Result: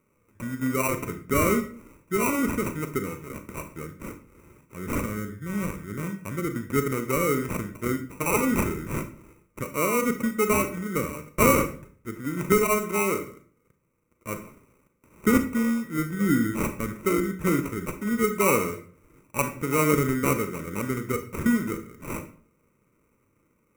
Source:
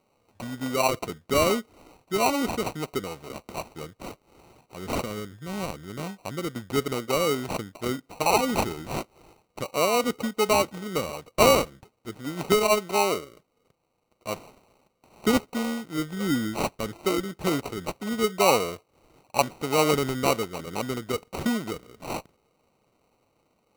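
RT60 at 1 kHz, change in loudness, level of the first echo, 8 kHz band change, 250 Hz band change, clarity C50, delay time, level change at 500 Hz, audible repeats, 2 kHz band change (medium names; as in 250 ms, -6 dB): 0.45 s, +0.5 dB, no echo, +0.5 dB, +3.5 dB, 11.0 dB, no echo, -1.5 dB, no echo, +2.0 dB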